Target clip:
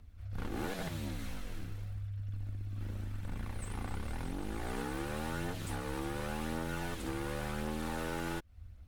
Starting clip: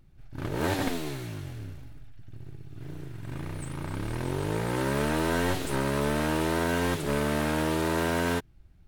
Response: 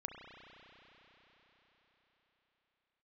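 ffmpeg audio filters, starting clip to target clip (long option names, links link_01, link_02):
-af "aphaser=in_gain=1:out_gain=1:delay=2.5:decay=0.27:speed=0.91:type=triangular,acompressor=threshold=-36dB:ratio=6,afreqshift=-100,volume=1dB"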